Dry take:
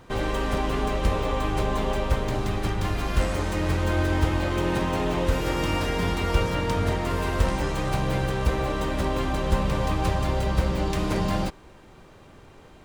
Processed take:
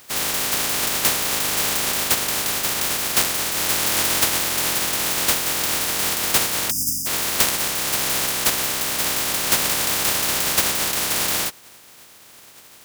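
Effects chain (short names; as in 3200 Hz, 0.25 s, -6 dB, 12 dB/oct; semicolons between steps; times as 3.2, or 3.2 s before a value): spectral contrast lowered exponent 0.11; HPF 81 Hz 6 dB/oct; spectral delete 6.7–7.07, 320–4800 Hz; gain +3 dB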